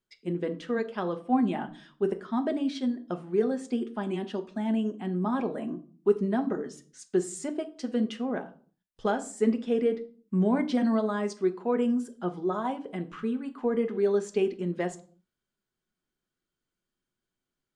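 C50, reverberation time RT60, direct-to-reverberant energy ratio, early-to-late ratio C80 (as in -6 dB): 16.0 dB, 0.45 s, 7.0 dB, 21.0 dB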